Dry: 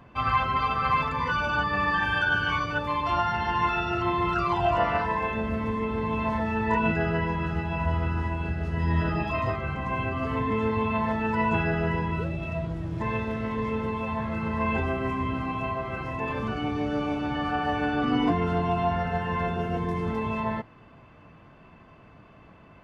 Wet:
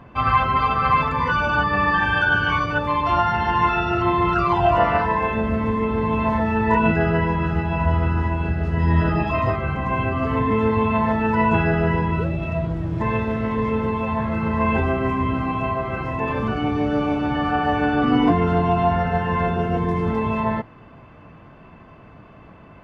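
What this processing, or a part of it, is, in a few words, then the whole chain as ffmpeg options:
behind a face mask: -af "highshelf=frequency=3400:gain=-8,volume=7dB"

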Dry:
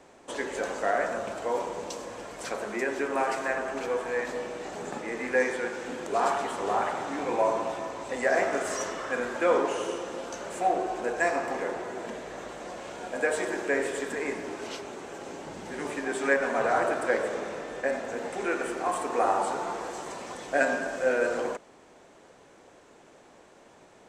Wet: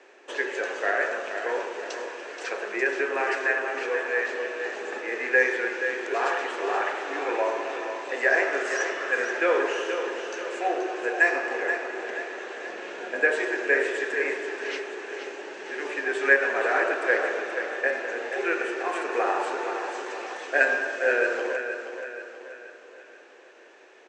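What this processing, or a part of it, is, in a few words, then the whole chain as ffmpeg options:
phone speaker on a table: -filter_complex "[0:a]asettb=1/sr,asplit=3[link_01][link_02][link_03];[link_01]atrim=end=12.694[link_04];[link_02]atrim=start=12.69:end=13.4,asetpts=PTS-STARTPTS,afade=type=in:duration=0.004:curve=qsin,afade=type=out:start_time=0.706:duration=0.004:curve=qsin,bass=frequency=250:gain=14,treble=frequency=4000:gain=-2[link_05];[link_03]atrim=start=13.396[link_06];[link_04][link_05]acrossfade=duration=0.004:curve1=hsin:curve2=qsin[link_07];[link_07][link_06]acrossfade=duration=0.004:curve1=qsin:curve2=hsin,highpass=frequency=350:width=0.5412,highpass=frequency=350:width=1.3066,equalizer=frequency=380:width_type=q:width=4:gain=6,equalizer=frequency=690:width_type=q:width=4:gain=-3,equalizer=frequency=1000:width_type=q:width=4:gain=-3,equalizer=frequency=1700:width_type=q:width=4:gain=9,equalizer=frequency=2600:width_type=q:width=4:gain=8,lowpass=frequency=6600:width=0.5412,lowpass=frequency=6600:width=1.3066,aecho=1:1:478|956|1434|1912|2390:0.376|0.177|0.083|0.039|0.0183"

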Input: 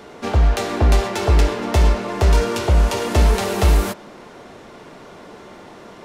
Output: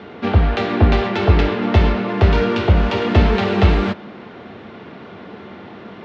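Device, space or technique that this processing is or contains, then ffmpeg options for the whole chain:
guitar cabinet: -af "highpass=77,equalizer=frequency=94:width_type=q:width=4:gain=7,equalizer=frequency=210:width_type=q:width=4:gain=6,equalizer=frequency=580:width_type=q:width=4:gain=-4,equalizer=frequency=980:width_type=q:width=4:gain=-4,lowpass=frequency=3700:width=0.5412,lowpass=frequency=3700:width=1.3066,volume=4dB"

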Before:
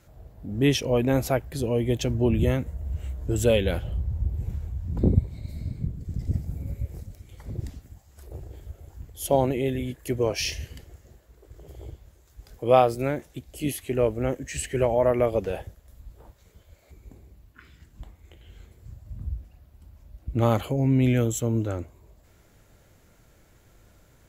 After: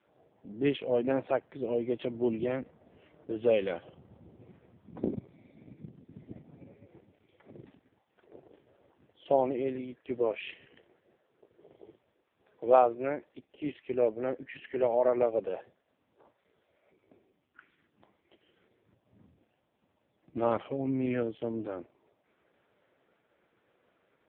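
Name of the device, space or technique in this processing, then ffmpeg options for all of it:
telephone: -af "highpass=48,highpass=290,lowpass=3100,volume=-3dB" -ar 8000 -c:a libopencore_amrnb -b:a 4750

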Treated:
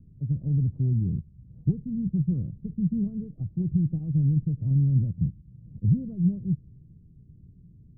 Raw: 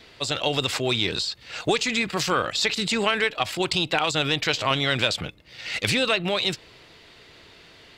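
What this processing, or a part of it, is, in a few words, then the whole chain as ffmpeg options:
the neighbour's flat through the wall: -af "lowpass=frequency=180:width=0.5412,lowpass=frequency=180:width=1.3066,equalizer=frequency=160:width_type=o:width=0.77:gain=4,volume=8.5dB"

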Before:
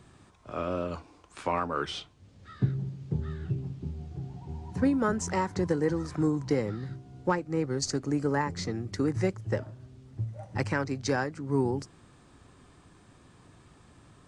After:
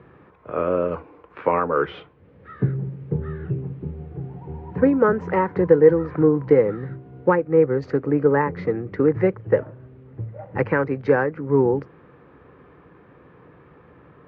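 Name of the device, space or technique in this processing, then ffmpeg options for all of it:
bass cabinet: -af "highpass=81,equalizer=frequency=100:width_type=q:width=4:gain=-9,equalizer=frequency=230:width_type=q:width=4:gain=-5,equalizer=frequency=480:width_type=q:width=4:gain=10,equalizer=frequency=690:width_type=q:width=4:gain=-4,lowpass=frequency=2200:width=0.5412,lowpass=frequency=2200:width=1.3066,volume=8dB"

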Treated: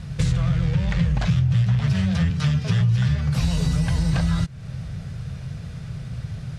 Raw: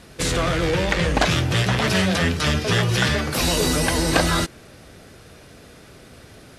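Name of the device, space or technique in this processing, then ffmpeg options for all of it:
jukebox: -filter_complex "[0:a]asettb=1/sr,asplit=3[link_01][link_02][link_03];[link_01]atrim=end=2.304[link_04];[link_02]atrim=start=2.3:end=2.81,asetpts=PTS-STARTPTS,afade=type=in:duration=0.004:curve=qsin,afade=type=out:start_time=0.506:duration=0.004:curve=qsin,highpass=130[link_05];[link_03]atrim=start=2.806[link_06];[link_04][link_05]acrossfade=duration=0.004:curve1=hsin:curve2=qsin[link_07];[link_07][link_06]acrossfade=duration=0.004:curve1=qsin:curve2=hsin,lowpass=7900,lowshelf=frequency=210:width_type=q:width=3:gain=13.5,acompressor=threshold=-20dB:ratio=4"

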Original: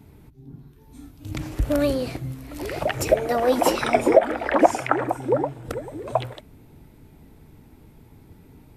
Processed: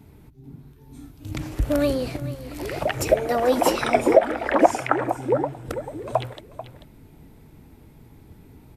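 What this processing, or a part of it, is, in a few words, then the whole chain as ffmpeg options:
ducked delay: -filter_complex "[0:a]asplit=3[link_01][link_02][link_03];[link_02]adelay=439,volume=-7dB[link_04];[link_03]apad=whole_len=406062[link_05];[link_04][link_05]sidechaincompress=threshold=-36dB:ratio=3:attack=41:release=711[link_06];[link_01][link_06]amix=inputs=2:normalize=0"

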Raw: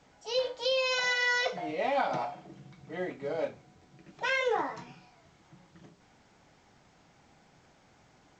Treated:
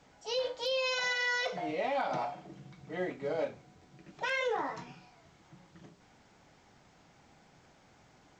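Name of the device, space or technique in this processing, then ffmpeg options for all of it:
clipper into limiter: -af "asoftclip=type=hard:threshold=-19.5dB,alimiter=limit=-24dB:level=0:latency=1:release=79"

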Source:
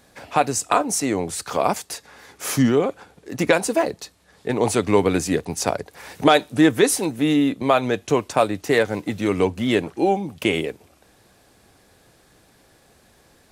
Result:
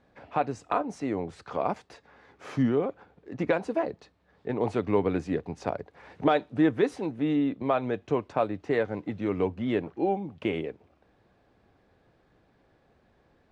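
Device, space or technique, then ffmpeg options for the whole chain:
phone in a pocket: -af "lowpass=3600,highshelf=frequency=2100:gain=-9.5,volume=-7dB"

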